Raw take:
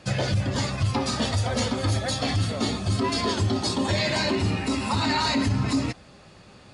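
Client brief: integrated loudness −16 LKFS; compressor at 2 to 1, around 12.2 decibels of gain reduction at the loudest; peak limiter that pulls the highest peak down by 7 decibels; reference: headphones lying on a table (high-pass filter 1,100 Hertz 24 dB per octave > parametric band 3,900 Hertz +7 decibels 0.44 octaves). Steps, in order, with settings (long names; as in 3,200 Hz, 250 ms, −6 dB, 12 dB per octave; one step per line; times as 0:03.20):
downward compressor 2 to 1, threshold −43 dBFS
brickwall limiter −31 dBFS
high-pass filter 1,100 Hz 24 dB per octave
parametric band 3,900 Hz +7 dB 0.44 octaves
level +25.5 dB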